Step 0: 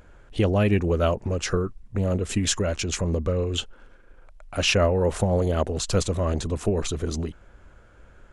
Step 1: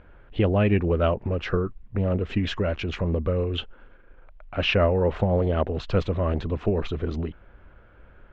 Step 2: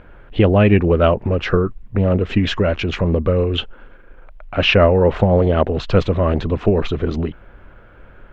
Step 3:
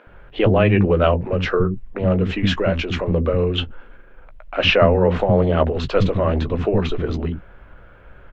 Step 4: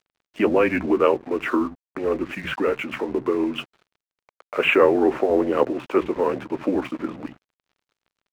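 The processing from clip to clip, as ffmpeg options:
-af "lowpass=f=3200:w=0.5412,lowpass=f=3200:w=1.3066"
-af "equalizer=f=66:t=o:w=0.38:g=-8.5,volume=2.66"
-filter_complex "[0:a]asplit=2[s0][s1];[s1]adelay=16,volume=0.282[s2];[s0][s2]amix=inputs=2:normalize=0,acrossover=split=280[s3][s4];[s3]adelay=70[s5];[s5][s4]amix=inputs=2:normalize=0,volume=0.891"
-af "highpass=f=370:t=q:w=0.5412,highpass=f=370:t=q:w=1.307,lowpass=f=2800:t=q:w=0.5176,lowpass=f=2800:t=q:w=0.7071,lowpass=f=2800:t=q:w=1.932,afreqshift=-120,aeval=exprs='sgn(val(0))*max(abs(val(0))-0.00668,0)':c=same"

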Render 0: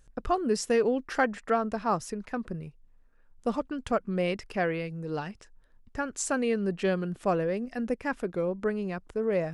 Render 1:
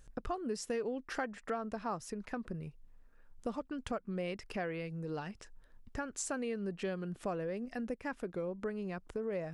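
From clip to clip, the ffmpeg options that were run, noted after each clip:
-af "acompressor=threshold=0.00891:ratio=2.5,volume=1.12"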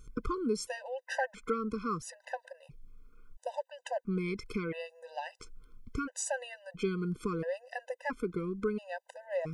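-af "afftfilt=real='re*gt(sin(2*PI*0.74*pts/sr)*(1-2*mod(floor(b*sr/1024/510),2)),0)':imag='im*gt(sin(2*PI*0.74*pts/sr)*(1-2*mod(floor(b*sr/1024/510),2)),0)':win_size=1024:overlap=0.75,volume=2.11"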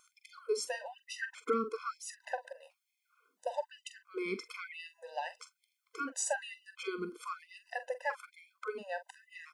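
-filter_complex "[0:a]asplit=2[s0][s1];[s1]adelay=44,volume=0.251[s2];[s0][s2]amix=inputs=2:normalize=0,afftfilt=real='re*gte(b*sr/1024,200*pow(2000/200,0.5+0.5*sin(2*PI*1.1*pts/sr)))':imag='im*gte(b*sr/1024,200*pow(2000/200,0.5+0.5*sin(2*PI*1.1*pts/sr)))':win_size=1024:overlap=0.75,volume=1.12"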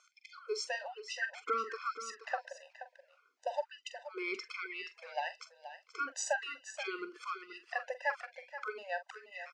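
-af "highpass=f=410:w=0.5412,highpass=f=410:w=1.3066,equalizer=f=470:t=q:w=4:g=-9,equalizer=f=1000:t=q:w=4:g=-6,equalizer=f=3500:t=q:w=4:g=-4,lowpass=f=6000:w=0.5412,lowpass=f=6000:w=1.3066,aecho=1:1:478:0.251,volume=1.5"

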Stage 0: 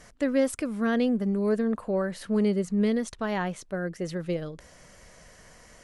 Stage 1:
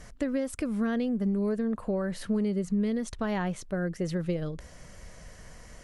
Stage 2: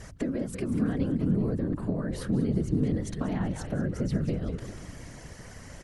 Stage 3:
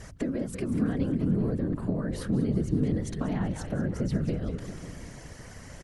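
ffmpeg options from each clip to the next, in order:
-af "acompressor=threshold=0.0398:ratio=6,lowshelf=f=160:g=10"
-filter_complex "[0:a]asplit=7[s0][s1][s2][s3][s4][s5][s6];[s1]adelay=191,afreqshift=-93,volume=0.282[s7];[s2]adelay=382,afreqshift=-186,volume=0.151[s8];[s3]adelay=573,afreqshift=-279,volume=0.0822[s9];[s4]adelay=764,afreqshift=-372,volume=0.0442[s10];[s5]adelay=955,afreqshift=-465,volume=0.024[s11];[s6]adelay=1146,afreqshift=-558,volume=0.0129[s12];[s0][s7][s8][s9][s10][s11][s12]amix=inputs=7:normalize=0,acrossover=split=250[s13][s14];[s14]acompressor=threshold=0.0126:ratio=6[s15];[s13][s15]amix=inputs=2:normalize=0,afftfilt=real='hypot(re,im)*cos(2*PI*random(0))':imag='hypot(re,im)*sin(2*PI*random(1))':win_size=512:overlap=0.75,volume=2.82"
-filter_complex "[0:a]asplit=2[s0][s1];[s1]adelay=548.1,volume=0.158,highshelf=f=4000:g=-12.3[s2];[s0][s2]amix=inputs=2:normalize=0"

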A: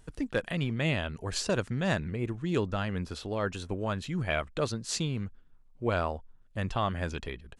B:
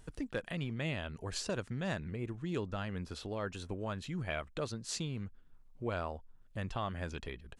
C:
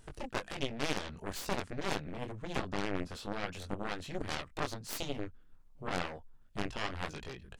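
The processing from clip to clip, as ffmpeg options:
-af "acompressor=threshold=0.00447:ratio=1.5"
-af "flanger=delay=19.5:depth=3.1:speed=2.1,aeval=exprs='0.0531*(cos(1*acos(clip(val(0)/0.0531,-1,1)))-cos(1*PI/2))+0.0211*(cos(4*acos(clip(val(0)/0.0531,-1,1)))-cos(4*PI/2))+0.0188*(cos(7*acos(clip(val(0)/0.0531,-1,1)))-cos(7*PI/2))':c=same,volume=1.12"

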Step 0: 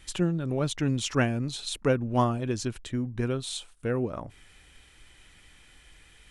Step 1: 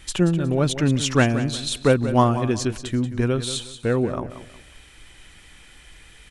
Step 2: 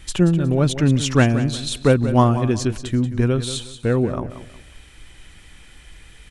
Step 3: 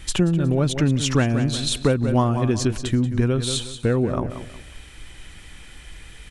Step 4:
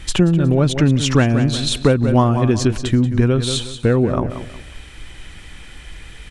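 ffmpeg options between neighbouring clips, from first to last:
-af "aecho=1:1:182|364|546:0.251|0.0728|0.0211,volume=2.24"
-af "lowshelf=f=250:g=5.5"
-af "acompressor=threshold=0.1:ratio=3,volume=1.41"
-af "highshelf=f=8300:g=-8,volume=1.78"

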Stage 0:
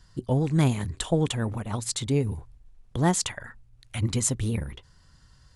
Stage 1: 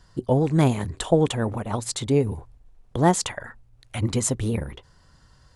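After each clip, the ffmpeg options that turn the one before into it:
-af "equalizer=f=590:t=o:w=2.4:g=7.5"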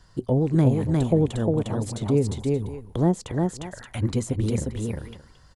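-filter_complex "[0:a]aecho=1:1:354|577:0.668|0.133,acrossover=split=540[s0][s1];[s1]acompressor=threshold=0.0158:ratio=12[s2];[s0][s2]amix=inputs=2:normalize=0"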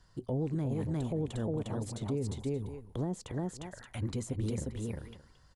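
-af "alimiter=limit=0.133:level=0:latency=1:release=24,volume=0.376"

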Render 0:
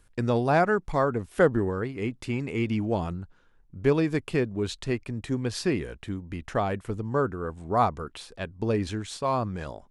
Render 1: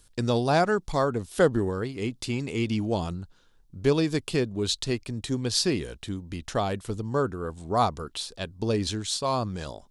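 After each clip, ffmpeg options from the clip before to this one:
-af "highshelf=f=2900:t=q:w=1.5:g=8.5"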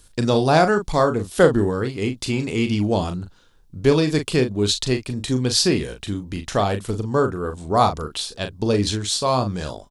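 -filter_complex "[0:a]asplit=2[s0][s1];[s1]adelay=39,volume=0.398[s2];[s0][s2]amix=inputs=2:normalize=0,volume=2"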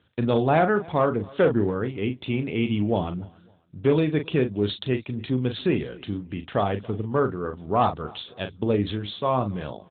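-af "asoftclip=type=hard:threshold=0.316,aecho=1:1:277|554:0.0631|0.0164,volume=0.708" -ar 8000 -c:a libopencore_amrnb -b:a 12200

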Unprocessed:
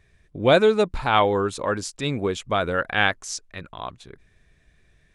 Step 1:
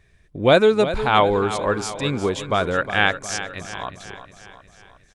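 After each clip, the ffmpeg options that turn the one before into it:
-af "aecho=1:1:360|720|1080|1440|1800|2160:0.251|0.136|0.0732|0.0396|0.0214|0.0115,volume=1.26"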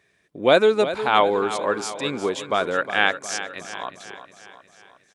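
-af "highpass=250,volume=0.891"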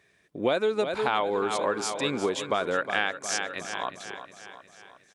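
-af "acompressor=threshold=0.0794:ratio=6"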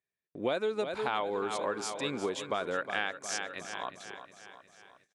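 -af "agate=range=0.0631:threshold=0.00141:ratio=16:detection=peak,volume=0.501"

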